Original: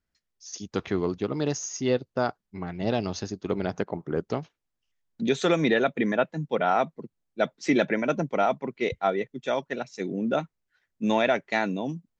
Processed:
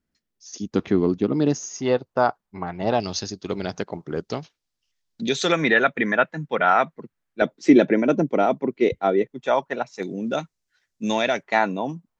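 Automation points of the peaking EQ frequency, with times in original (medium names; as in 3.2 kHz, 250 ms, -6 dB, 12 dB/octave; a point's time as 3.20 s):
peaking EQ +10.5 dB 1.5 oct
250 Hz
from 1.78 s 920 Hz
from 3.00 s 4.9 kHz
from 5.52 s 1.6 kHz
from 7.42 s 320 Hz
from 9.30 s 930 Hz
from 10.03 s 6 kHz
from 11.43 s 980 Hz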